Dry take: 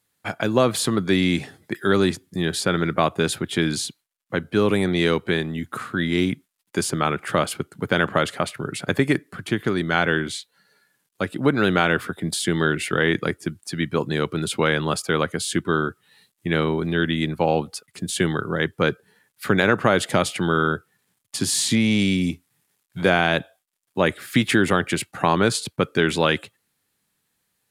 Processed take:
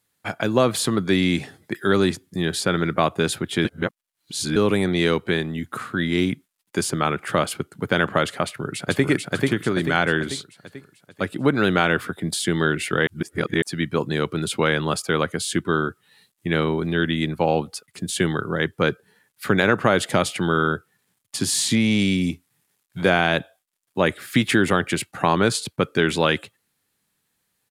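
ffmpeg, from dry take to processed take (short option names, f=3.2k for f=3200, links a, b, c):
-filter_complex "[0:a]asplit=2[a][b];[b]afade=t=in:st=8.44:d=0.01,afade=t=out:st=9.08:d=0.01,aecho=0:1:440|880|1320|1760|2200|2640|3080:0.841395|0.420698|0.210349|0.105174|0.0525872|0.0262936|0.0131468[c];[a][c]amix=inputs=2:normalize=0,asplit=5[d][e][f][g][h];[d]atrim=end=3.652[i];[e]atrim=start=3.648:end=4.562,asetpts=PTS-STARTPTS,areverse[j];[f]atrim=start=4.558:end=13.072[k];[g]atrim=start=13.068:end=13.622,asetpts=PTS-STARTPTS,areverse[l];[h]atrim=start=13.618[m];[i][j]acrossfade=d=0.004:c1=hsin:c2=hsin[n];[n][k]acrossfade=d=0.004:c1=hsin:c2=hsin[o];[o][l]acrossfade=d=0.004:c1=hsin:c2=hsin[p];[p][m]acrossfade=d=0.004:c1=hsin:c2=hsin"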